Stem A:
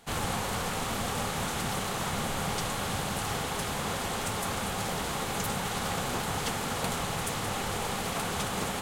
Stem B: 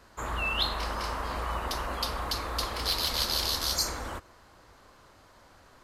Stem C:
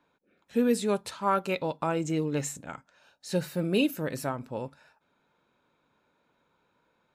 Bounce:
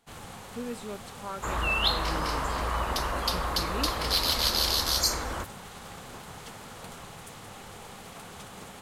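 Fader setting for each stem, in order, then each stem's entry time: -12.5 dB, +3.0 dB, -12.0 dB; 0.00 s, 1.25 s, 0.00 s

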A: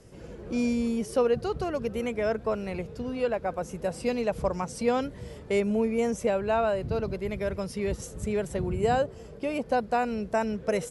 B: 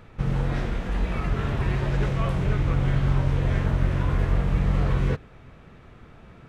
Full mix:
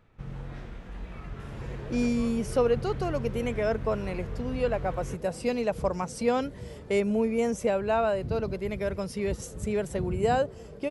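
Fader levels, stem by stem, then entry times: 0.0 dB, -14.0 dB; 1.40 s, 0.00 s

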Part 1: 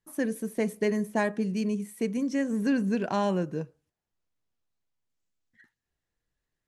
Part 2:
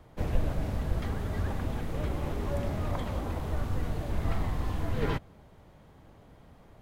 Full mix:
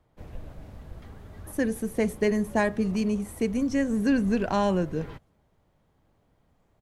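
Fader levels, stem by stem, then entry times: +2.5 dB, -12.5 dB; 1.40 s, 0.00 s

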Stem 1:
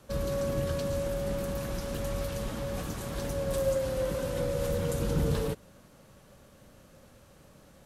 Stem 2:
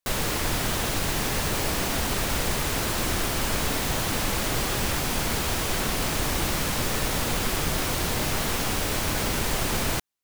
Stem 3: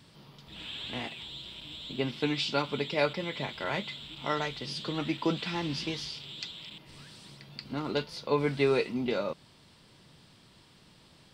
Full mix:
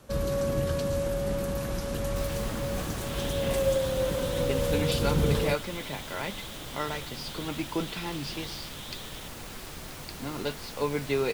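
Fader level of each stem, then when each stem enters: +2.5 dB, -15.5 dB, -2.0 dB; 0.00 s, 2.10 s, 2.50 s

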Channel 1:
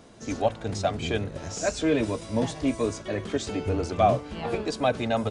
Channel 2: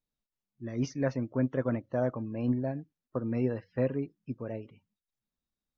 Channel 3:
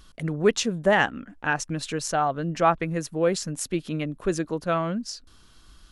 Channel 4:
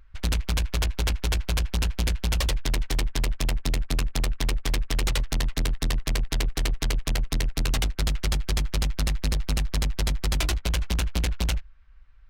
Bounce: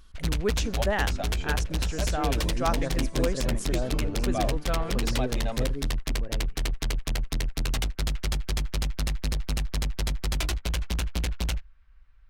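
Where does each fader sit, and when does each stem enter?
-9.5 dB, -4.0 dB, -7.5 dB, -3.0 dB; 0.35 s, 1.80 s, 0.00 s, 0.00 s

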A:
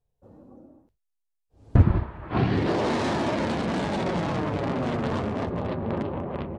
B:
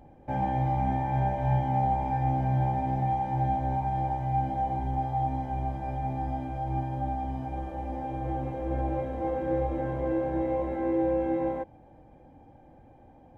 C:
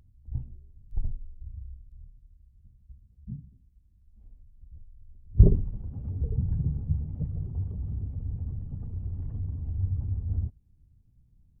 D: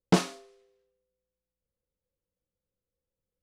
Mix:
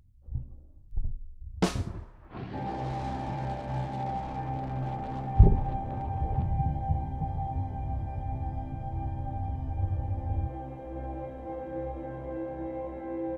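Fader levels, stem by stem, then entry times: -16.5 dB, -7.5 dB, -1.5 dB, -4.5 dB; 0.00 s, 2.25 s, 0.00 s, 1.50 s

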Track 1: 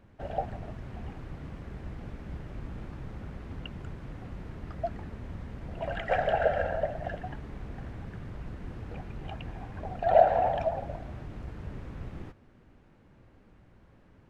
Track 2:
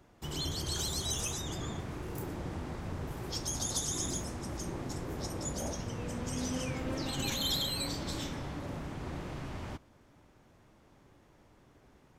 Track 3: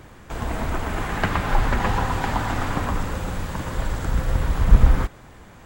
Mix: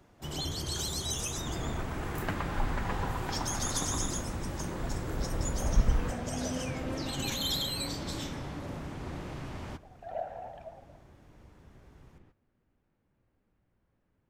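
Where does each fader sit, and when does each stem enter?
-17.0 dB, +0.5 dB, -12.0 dB; 0.00 s, 0.00 s, 1.05 s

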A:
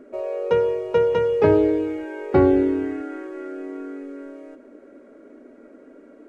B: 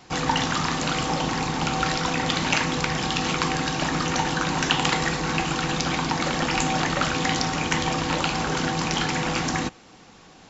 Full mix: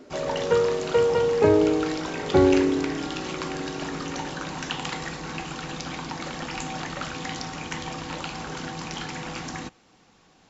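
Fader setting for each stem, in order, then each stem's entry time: -2.0 dB, -9.0 dB; 0.00 s, 0.00 s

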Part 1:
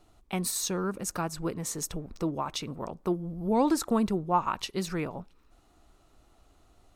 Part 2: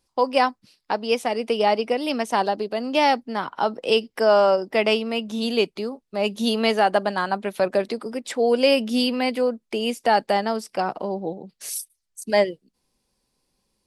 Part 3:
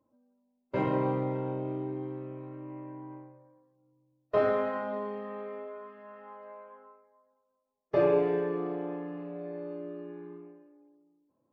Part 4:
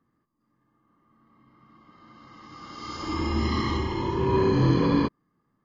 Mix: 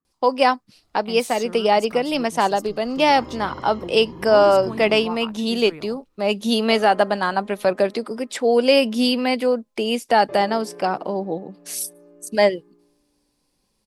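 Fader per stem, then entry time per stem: -6.5 dB, +2.5 dB, -10.5 dB, -15.0 dB; 0.75 s, 0.05 s, 2.35 s, 0.00 s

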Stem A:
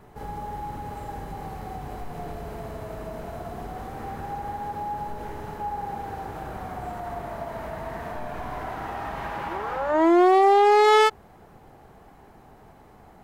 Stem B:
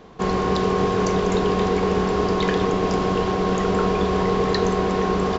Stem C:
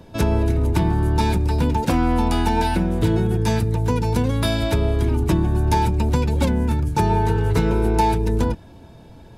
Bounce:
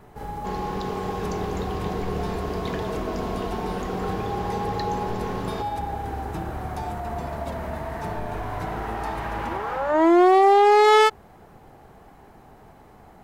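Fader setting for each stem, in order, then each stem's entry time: +1.5 dB, -10.0 dB, -16.0 dB; 0.00 s, 0.25 s, 1.05 s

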